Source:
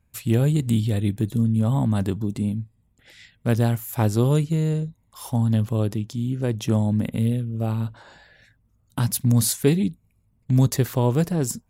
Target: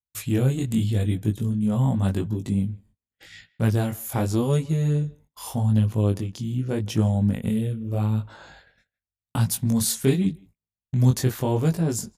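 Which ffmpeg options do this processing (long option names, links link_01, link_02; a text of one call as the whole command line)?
ffmpeg -i in.wav -filter_complex "[0:a]asetrate=42336,aresample=44100,asplit=2[link_01][link_02];[link_02]acompressor=threshold=-31dB:ratio=6,volume=-2dB[link_03];[link_01][link_03]amix=inputs=2:normalize=0,agate=range=-38dB:threshold=-46dB:ratio=16:detection=peak,flanger=delay=18:depth=5.4:speed=0.85,asplit=2[link_04][link_05];[link_05]adelay=160,highpass=300,lowpass=3400,asoftclip=type=hard:threshold=-18dB,volume=-23dB[link_06];[link_04][link_06]amix=inputs=2:normalize=0" out.wav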